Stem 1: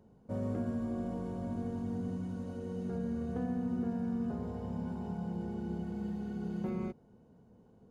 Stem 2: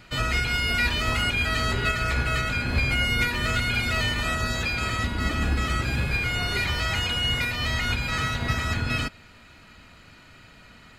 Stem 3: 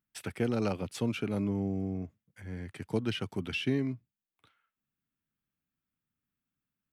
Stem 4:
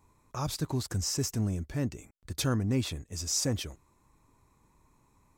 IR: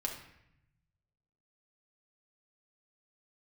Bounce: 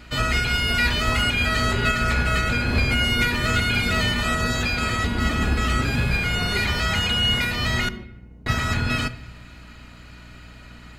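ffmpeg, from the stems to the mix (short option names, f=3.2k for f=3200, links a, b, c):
-filter_complex "[0:a]flanger=delay=18.5:depth=5.9:speed=0.26,acompressor=threshold=-43dB:ratio=6,adelay=1100,volume=-1.5dB,asplit=2[a][b];[b]volume=-4.5dB[c];[1:a]volume=-6dB,asplit=3[d][e][f];[d]atrim=end=7.89,asetpts=PTS-STARTPTS,afade=t=out:st=7.886:d=0.004:c=hsin[g];[e]atrim=start=7.89:end=8.46,asetpts=PTS-STARTPTS,volume=0[h];[f]atrim=start=8.46,asetpts=PTS-STARTPTS,afade=t=in:d=0.004:c=hsin[i];[g][h][i]concat=n=3:v=0:a=1,asplit=2[j][k];[k]volume=-8.5dB[l];[2:a]adelay=2100,volume=-12.5dB[m];[4:a]atrim=start_sample=2205[n];[c][l]amix=inputs=2:normalize=0[o];[o][n]afir=irnorm=-1:irlink=0[p];[a][j][m][p]amix=inputs=4:normalize=0,acontrast=74,aeval=exprs='val(0)+0.00631*(sin(2*PI*60*n/s)+sin(2*PI*2*60*n/s)/2+sin(2*PI*3*60*n/s)/3+sin(2*PI*4*60*n/s)/4+sin(2*PI*5*60*n/s)/5)':c=same"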